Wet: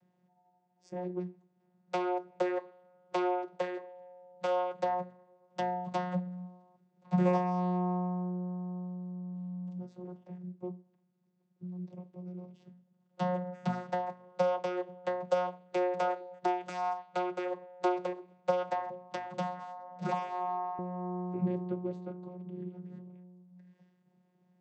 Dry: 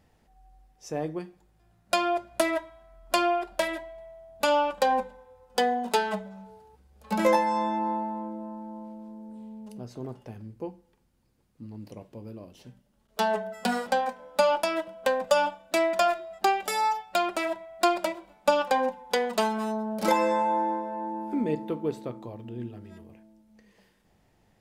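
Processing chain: vocoder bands 16, saw 180 Hz; 18.68–20.79 s: hum notches 60/120/180/240/300/360/420/480/540 Hz; trim -5 dB

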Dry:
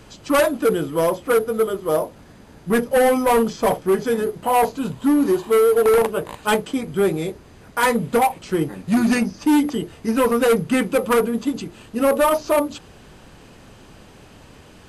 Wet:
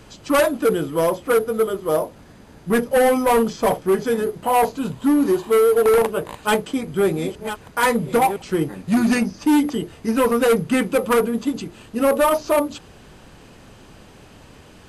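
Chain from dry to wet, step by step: 6.33–8.42 s: chunks repeated in reverse 678 ms, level -9.5 dB

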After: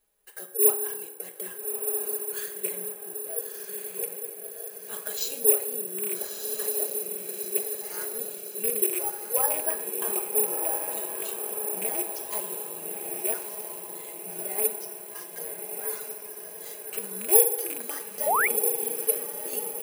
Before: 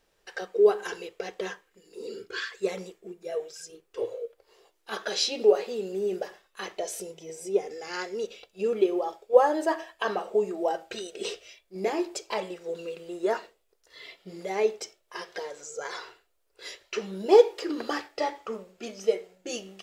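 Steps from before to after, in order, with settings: rattle on loud lows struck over -37 dBFS, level -18 dBFS; comb 4.8 ms; echo that smears into a reverb 1278 ms, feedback 55%, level -4.5 dB; on a send at -7.5 dB: reverberation RT60 1.3 s, pre-delay 3 ms; on the sum: careless resampling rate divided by 4×, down filtered, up zero stuff; painted sound rise, 18.26–18.48 s, 530–2500 Hz -12 dBFS; trim -11 dB

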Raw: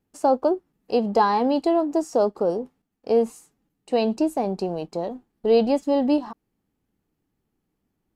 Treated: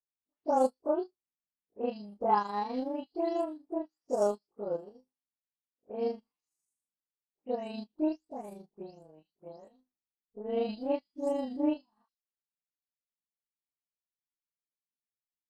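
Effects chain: delay that grows with frequency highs late, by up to 158 ms; granular stretch 1.9×, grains 82 ms; upward expansion 2.5:1, over -39 dBFS; trim -4.5 dB

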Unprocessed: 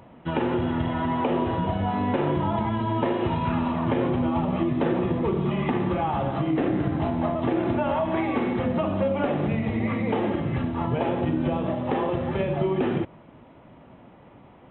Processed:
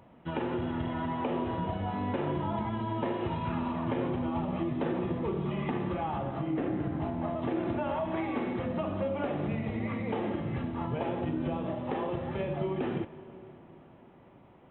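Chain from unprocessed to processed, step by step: 6.18–7.28 s: distance through air 190 m; plate-style reverb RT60 4.6 s, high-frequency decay 0.75×, DRR 14 dB; trim -7.5 dB

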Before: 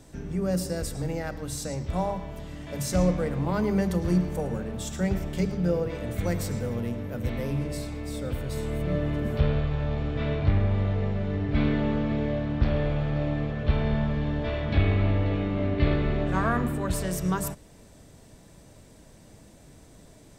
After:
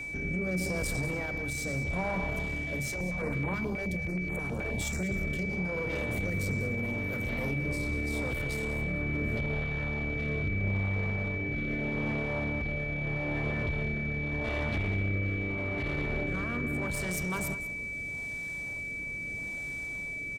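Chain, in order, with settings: compression 4:1, threshold -29 dBFS, peak gain reduction 11.5 dB; peak limiter -26.5 dBFS, peak gain reduction 7.5 dB; one-sided clip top -40.5 dBFS; rotary cabinet horn 0.8 Hz; whistle 2.3 kHz -42 dBFS; delay 193 ms -14 dB; 2.90–5.09 s: step-sequenced notch 9.4 Hz 210–5200 Hz; trim +6 dB

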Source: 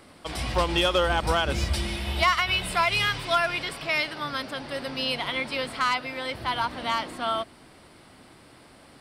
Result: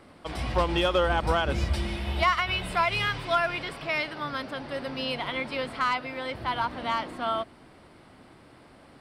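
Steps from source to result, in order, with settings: treble shelf 3.4 kHz -10.5 dB

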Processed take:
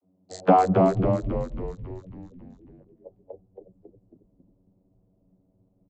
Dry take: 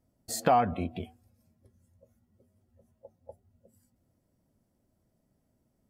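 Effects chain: local Wiener filter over 25 samples; vocoder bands 32, saw 92.9 Hz; frequency-shifting echo 274 ms, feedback 58%, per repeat -74 Hz, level -3.5 dB; trim +8 dB

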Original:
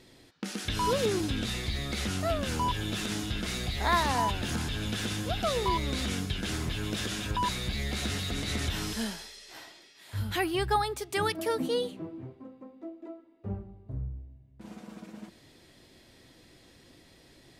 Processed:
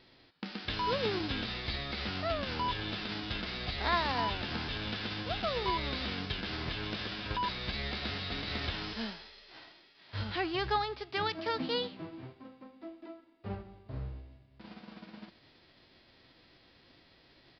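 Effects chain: formants flattened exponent 0.6; resampled via 11.025 kHz; trim -4 dB

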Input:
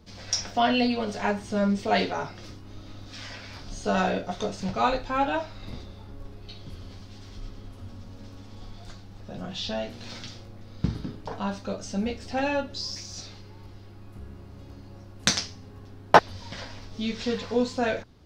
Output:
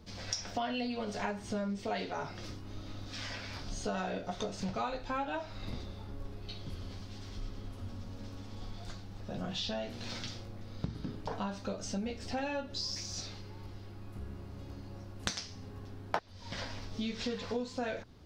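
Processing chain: compression 6:1, threshold -32 dBFS, peak gain reduction 21 dB; trim -1 dB

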